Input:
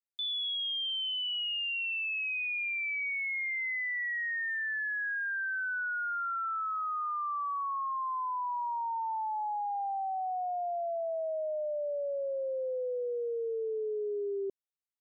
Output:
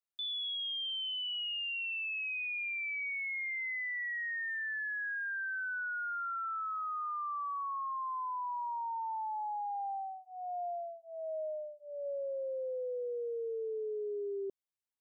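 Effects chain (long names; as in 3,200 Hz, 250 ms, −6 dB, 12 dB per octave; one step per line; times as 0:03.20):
0:09.87–0:12.06: tremolo along a rectified sine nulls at 1.3 Hz
level −3.5 dB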